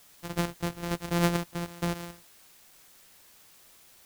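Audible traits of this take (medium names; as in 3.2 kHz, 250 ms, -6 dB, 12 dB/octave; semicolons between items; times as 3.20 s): a buzz of ramps at a fixed pitch in blocks of 256 samples; chopped level 1.1 Hz, depth 60%, duty 50%; a quantiser's noise floor 10-bit, dither triangular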